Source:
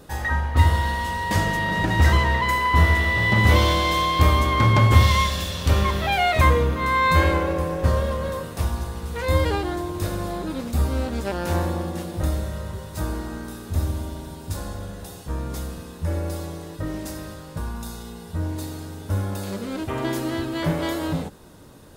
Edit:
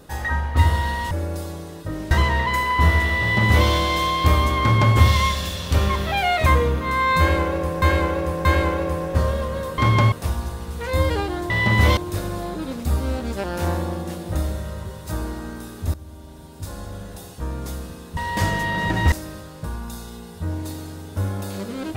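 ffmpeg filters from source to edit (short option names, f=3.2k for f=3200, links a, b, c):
-filter_complex "[0:a]asplit=12[a][b][c][d][e][f][g][h][i][j][k][l];[a]atrim=end=1.112[m];[b]atrim=start=16.048:end=17.052[n];[c]atrim=start=2.058:end=7.772[o];[d]atrim=start=7.138:end=7.772[p];[e]atrim=start=7.138:end=8.472[q];[f]atrim=start=4.558:end=4.902[r];[g]atrim=start=8.468:end=9.852[s];[h]atrim=start=3.158:end=3.632[t];[i]atrim=start=9.848:end=13.82,asetpts=PTS-STARTPTS,afade=t=out:st=3.968:d=0.004:c=hsin:silence=0.141254[u];[j]atrim=start=13.82:end=16.052,asetpts=PTS-STARTPTS,afade=t=in:d=1.11:silence=0.141254[v];[k]atrim=start=1.108:end=2.062[w];[l]atrim=start=17.048[x];[m][n]acrossfade=d=0.004:c1=hsin:c2=hsin[y];[y][o]acrossfade=d=0.004:c1=hsin:c2=hsin[z];[z][p]acrossfade=d=0.004:c1=hsin:c2=hsin[aa];[aa][q]acrossfade=d=0.004:c1=hsin:c2=hsin[ab];[ab][r]acrossfade=d=0.004:c1=hsin:c2=hsin[ac];[ac][s]acrossfade=d=0.004:c1=hsin:c2=hsin[ad];[ad][t]acrossfade=d=0.004:c1=hsin:c2=hsin[ae];[u][v]concat=n=2:v=0:a=1[af];[ae][af]acrossfade=d=0.004:c1=hsin:c2=hsin[ag];[ag][w]acrossfade=d=0.004:c1=hsin:c2=hsin[ah];[ah][x]acrossfade=d=0.004:c1=hsin:c2=hsin"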